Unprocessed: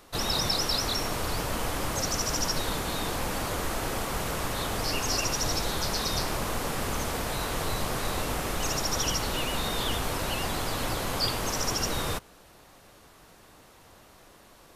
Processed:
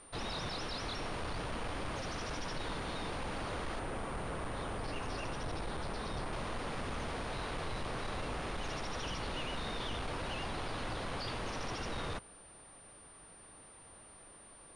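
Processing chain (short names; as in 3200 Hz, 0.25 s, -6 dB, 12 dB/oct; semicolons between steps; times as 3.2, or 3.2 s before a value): 3.79–6.33 high shelf 2900 Hz -9.5 dB; soft clip -29 dBFS, distortion -11 dB; pulse-width modulation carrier 9100 Hz; gain -4.5 dB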